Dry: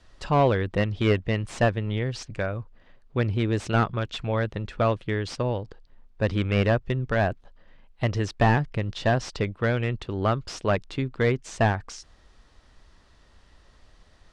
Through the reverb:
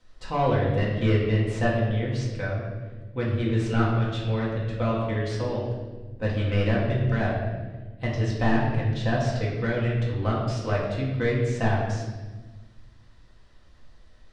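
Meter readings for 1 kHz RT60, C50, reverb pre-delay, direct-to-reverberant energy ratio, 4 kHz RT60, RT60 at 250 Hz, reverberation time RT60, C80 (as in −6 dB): 1.1 s, 2.0 dB, 4 ms, −5.5 dB, 1.0 s, 1.8 s, 1.3 s, 4.0 dB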